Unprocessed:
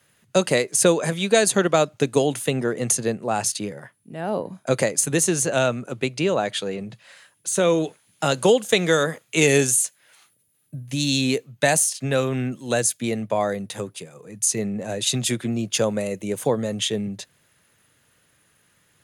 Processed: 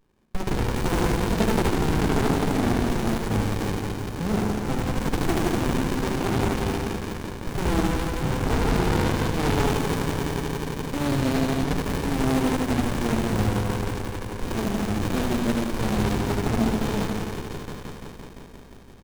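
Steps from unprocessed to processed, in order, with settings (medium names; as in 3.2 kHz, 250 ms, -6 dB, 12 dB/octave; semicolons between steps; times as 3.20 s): in parallel at -4 dB: bit crusher 4-bit; on the sum: elliptic high-pass 210 Hz; on a send: thinning echo 172 ms, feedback 84%, high-pass 320 Hz, level -5 dB; on the sum: saturation -12 dBFS, distortion -12 dB; feedback delay 76 ms, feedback 59%, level -3.5 dB; sliding maximum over 65 samples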